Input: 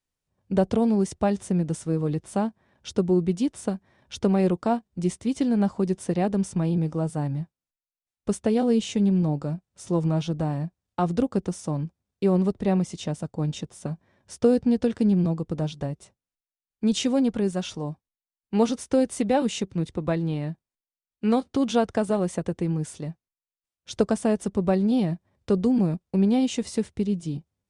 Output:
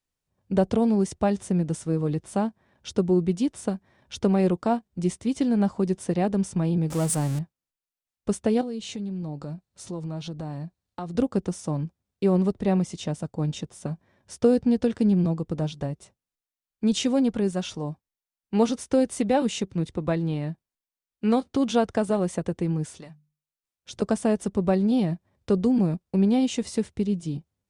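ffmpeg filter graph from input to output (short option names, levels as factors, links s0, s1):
-filter_complex "[0:a]asettb=1/sr,asplit=3[s0][s1][s2];[s0]atrim=end=6.904[s3];[s1]atrim=start=6.9:end=7.39,asetpts=PTS-STARTPTS,afade=t=in:d=0.004:c=qsin,afade=t=out:st=0.486:d=0.004:c=qsin,aeval=exprs='val(0)+0.5*0.0237*sgn(val(0))':c=same,equalizer=f=8800:w=0.68:g=12.5[s4];[s2]atrim=start=7.386[s5];[s3][s4]acrossfade=d=0.004:c1=hsin:c2=qsin[s6];[s6][s5]acrossfade=d=0.004:c1=qsin:c2=hsin,asettb=1/sr,asplit=3[s7][s8][s9];[s7]atrim=end=8.614[s10];[s8]atrim=start=8.61:end=11.15,asetpts=PTS-STARTPTS,afade=t=in:d=0.004:c=qsin,afade=t=out:st=2.536:d=0.004:c=qsin,equalizer=f=4200:w=6.4:g=7,acompressor=threshold=0.0224:ratio=3:attack=3.2:release=140:knee=1:detection=peak[s11];[s9]atrim=start=11.146[s12];[s10][s11]acrossfade=d=0.004:c1=hsin:c2=qsin[s13];[s13][s12]acrossfade=d=0.004:c1=qsin:c2=hsin,asettb=1/sr,asplit=3[s14][s15][s16];[s14]atrim=end=22.854[s17];[s15]atrim=start=22.85:end=24.02,asetpts=PTS-STARTPTS,afade=t=in:d=0.004:c=qsin,afade=t=out:st=1.166:d=0.004:c=qsin,acrossover=split=750|7300[s18][s19][s20];[s18]acompressor=threshold=0.00708:ratio=4[s21];[s19]acompressor=threshold=0.01:ratio=4[s22];[s20]acompressor=threshold=0.00398:ratio=4[s23];[s21][s22][s23]amix=inputs=3:normalize=0,bandreject=f=50:t=h:w=6,bandreject=f=100:t=h:w=6,bandreject=f=150:t=h:w=6,bandreject=f=200:t=h:w=6,bandreject=f=250:t=h:w=6[s24];[s16]atrim=start=24.016[s25];[s17][s24]acrossfade=d=0.004:c1=hsin:c2=qsin[s26];[s26][s25]acrossfade=d=0.004:c1=qsin:c2=hsin"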